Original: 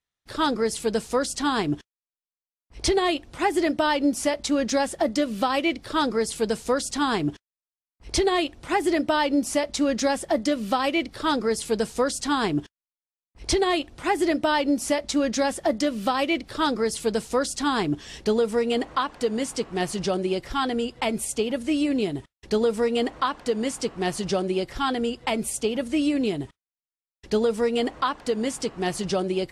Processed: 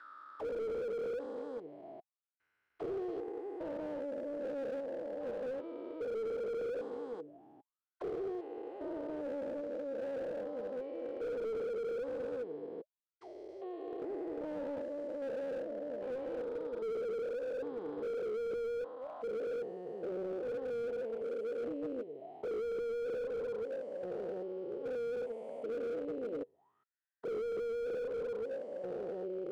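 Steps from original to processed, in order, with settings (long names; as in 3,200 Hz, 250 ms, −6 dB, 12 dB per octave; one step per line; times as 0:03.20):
spectrum averaged block by block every 400 ms
envelope filter 480–1,600 Hz, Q 15, down, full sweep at −29.5 dBFS
slew-rate limiting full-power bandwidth 3.1 Hz
level +8 dB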